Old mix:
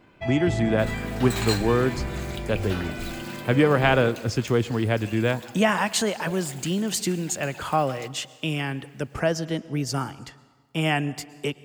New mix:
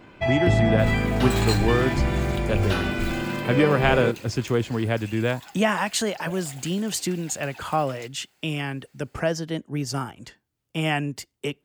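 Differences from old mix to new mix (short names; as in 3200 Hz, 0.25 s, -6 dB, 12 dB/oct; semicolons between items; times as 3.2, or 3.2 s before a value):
first sound +7.5 dB; reverb: off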